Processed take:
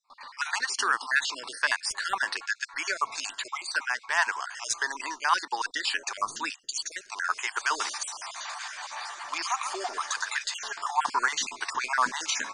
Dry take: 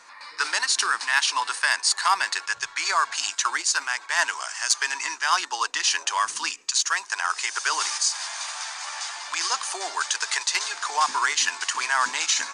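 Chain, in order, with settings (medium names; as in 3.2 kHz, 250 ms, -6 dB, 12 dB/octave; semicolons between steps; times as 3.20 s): random holes in the spectrogram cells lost 39%; gate with hold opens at -39 dBFS; tilt EQ -2.5 dB/octave; 8.11–10.44 s: repeats whose band climbs or falls 126 ms, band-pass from 1.5 kHz, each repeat 0.7 oct, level -4 dB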